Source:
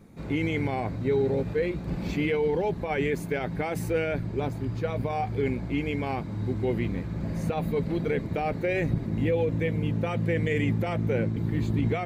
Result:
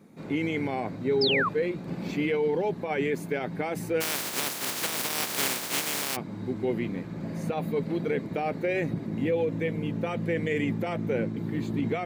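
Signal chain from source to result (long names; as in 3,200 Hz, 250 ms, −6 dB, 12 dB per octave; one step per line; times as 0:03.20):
0:04.00–0:06.15: compressing power law on the bin magnitudes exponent 0.16
Chebyshev high-pass filter 200 Hz, order 2
0:01.21–0:01.49: sound drawn into the spectrogram fall 1,000–5,400 Hz −26 dBFS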